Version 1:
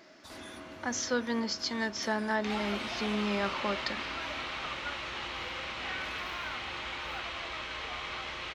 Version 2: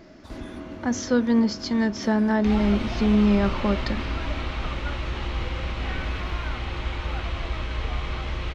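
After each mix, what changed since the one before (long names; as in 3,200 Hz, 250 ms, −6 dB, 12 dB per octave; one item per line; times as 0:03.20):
first sound: add bass and treble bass −9 dB, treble −6 dB
master: remove high-pass filter 1,100 Hz 6 dB per octave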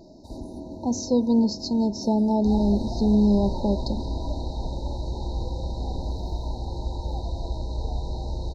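master: add linear-phase brick-wall band-stop 1,000–3,700 Hz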